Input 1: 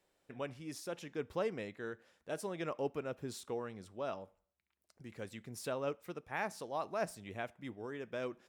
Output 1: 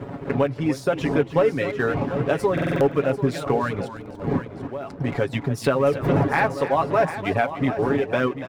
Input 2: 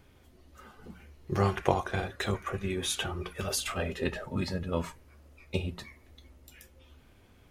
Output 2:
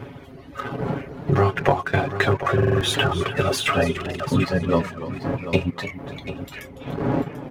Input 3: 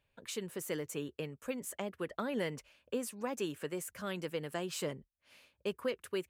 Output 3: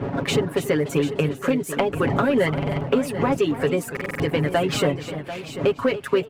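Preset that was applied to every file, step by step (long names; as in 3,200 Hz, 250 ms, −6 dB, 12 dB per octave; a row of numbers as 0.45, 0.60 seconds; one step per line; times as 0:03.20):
wind on the microphone 420 Hz −49 dBFS
reverb reduction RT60 0.74 s
high-pass filter 72 Hz 12 dB per octave
bass and treble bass +1 dB, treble −15 dB
comb filter 7.2 ms, depth 70%
leveller curve on the samples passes 1
downward compressor 2.5 to 1, threshold −45 dBFS
on a send: single-tap delay 741 ms −12 dB
on the sum: buffer that repeats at 0:02.53/0:03.92, samples 2,048, times 5
feedback echo with a swinging delay time 289 ms, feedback 31%, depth 126 cents, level −13 dB
loudness normalisation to −23 LKFS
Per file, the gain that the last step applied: +23.0, +21.0, +22.5 decibels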